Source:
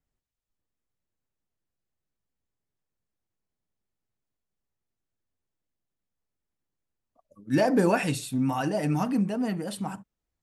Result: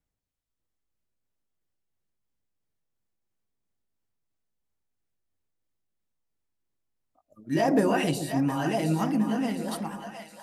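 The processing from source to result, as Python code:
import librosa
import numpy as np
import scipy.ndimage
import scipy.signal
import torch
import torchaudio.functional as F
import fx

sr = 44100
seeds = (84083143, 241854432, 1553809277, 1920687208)

y = fx.pitch_heads(x, sr, semitones=1.0)
y = fx.echo_split(y, sr, split_hz=670.0, low_ms=130, high_ms=713, feedback_pct=52, wet_db=-7.0)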